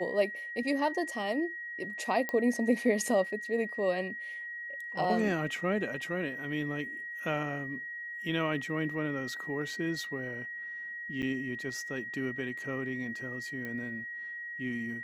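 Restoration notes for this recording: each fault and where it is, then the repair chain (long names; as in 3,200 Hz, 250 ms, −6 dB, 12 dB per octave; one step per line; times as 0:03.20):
whistle 1,900 Hz −38 dBFS
0:02.29: click −18 dBFS
0:11.22–0:11.23: drop-out 8.3 ms
0:13.65: click −26 dBFS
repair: click removal
notch filter 1,900 Hz, Q 30
repair the gap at 0:11.22, 8.3 ms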